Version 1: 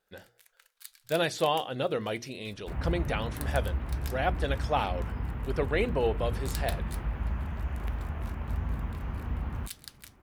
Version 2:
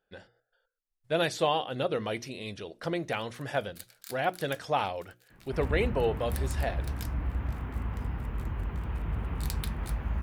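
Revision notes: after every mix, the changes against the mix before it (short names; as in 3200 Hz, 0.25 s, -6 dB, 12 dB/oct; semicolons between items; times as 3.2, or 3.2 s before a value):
first sound: entry +2.95 s; second sound: entry +2.85 s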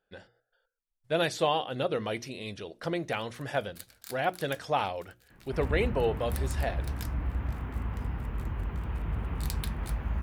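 first sound: remove HPF 1200 Hz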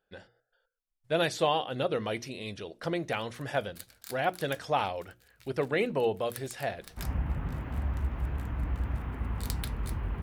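second sound: entry +1.45 s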